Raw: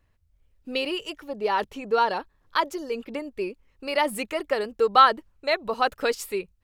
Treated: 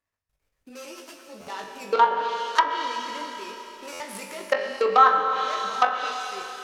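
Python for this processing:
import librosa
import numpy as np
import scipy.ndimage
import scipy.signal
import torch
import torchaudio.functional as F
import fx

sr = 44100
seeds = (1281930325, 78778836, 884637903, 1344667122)

p1 = scipy.signal.medfilt(x, 15)
p2 = fx.high_shelf(p1, sr, hz=5900.0, db=-7.0)
p3 = fx.level_steps(p2, sr, step_db=21)
p4 = fx.tilt_eq(p3, sr, slope=4.5)
p5 = p4 + fx.room_flutter(p4, sr, wall_m=3.5, rt60_s=0.21, dry=0)
p6 = fx.rev_schroeder(p5, sr, rt60_s=3.6, comb_ms=28, drr_db=3.5)
p7 = fx.env_lowpass_down(p6, sr, base_hz=1500.0, full_db=-22.5)
p8 = fx.buffer_glitch(p7, sr, at_s=(1.4, 3.92), block=512, repeats=6)
p9 = fx.ensemble(p8, sr, at=(0.69, 1.47))
y = F.gain(torch.from_numpy(p9), 6.5).numpy()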